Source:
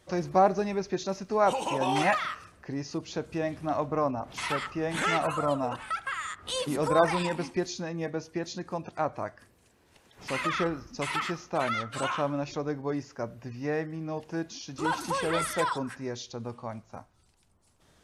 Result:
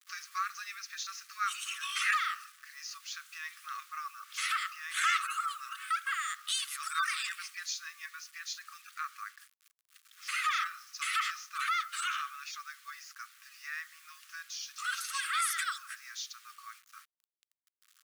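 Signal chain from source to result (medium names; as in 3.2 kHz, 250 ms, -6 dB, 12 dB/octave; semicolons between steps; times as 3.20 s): treble shelf 8.4 kHz +7 dB; bit crusher 9-bit; brick-wall FIR high-pass 1.1 kHz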